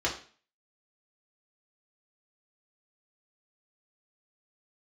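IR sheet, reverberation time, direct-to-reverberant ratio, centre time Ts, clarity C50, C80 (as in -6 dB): 0.40 s, -3.5 dB, 20 ms, 9.0 dB, 13.5 dB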